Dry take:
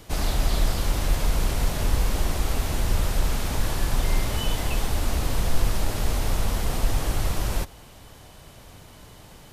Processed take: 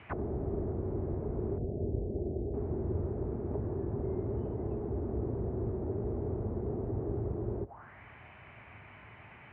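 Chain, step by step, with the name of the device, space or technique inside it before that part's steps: 1.58–2.54 elliptic band-stop 670–8100 Hz, stop band 40 dB; envelope filter bass rig (envelope low-pass 400–2800 Hz down, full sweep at -21 dBFS; speaker cabinet 70–2300 Hz, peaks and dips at 72 Hz -3 dB, 170 Hz -7 dB, 290 Hz -6 dB, 500 Hz -9 dB); gain -3.5 dB

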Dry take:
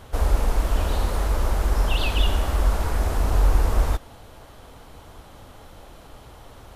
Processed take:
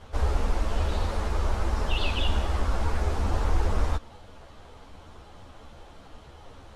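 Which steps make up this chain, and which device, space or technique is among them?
string-machine ensemble chorus (ensemble effect; LPF 6900 Hz 12 dB/oct)

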